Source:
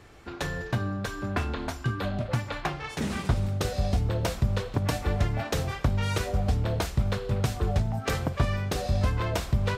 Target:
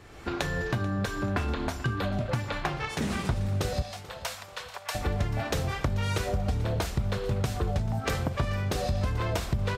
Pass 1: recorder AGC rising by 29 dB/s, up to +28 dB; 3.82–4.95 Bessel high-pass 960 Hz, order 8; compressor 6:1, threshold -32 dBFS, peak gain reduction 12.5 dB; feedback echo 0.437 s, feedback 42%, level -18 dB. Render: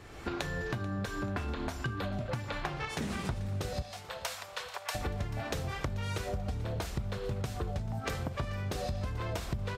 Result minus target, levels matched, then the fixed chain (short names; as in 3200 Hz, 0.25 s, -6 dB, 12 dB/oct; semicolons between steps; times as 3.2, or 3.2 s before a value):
compressor: peak gain reduction +7.5 dB
recorder AGC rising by 29 dB/s, up to +28 dB; 3.82–4.95 Bessel high-pass 960 Hz, order 8; compressor 6:1, threshold -23 dBFS, peak gain reduction 5 dB; feedback echo 0.437 s, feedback 42%, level -18 dB